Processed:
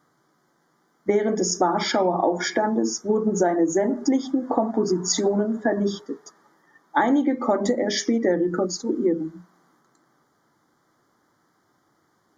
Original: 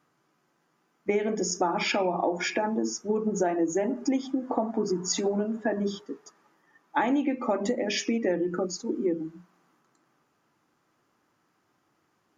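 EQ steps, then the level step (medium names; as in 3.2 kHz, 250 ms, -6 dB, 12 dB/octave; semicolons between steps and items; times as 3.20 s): Butterworth band-stop 2.6 kHz, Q 2.3; +5.5 dB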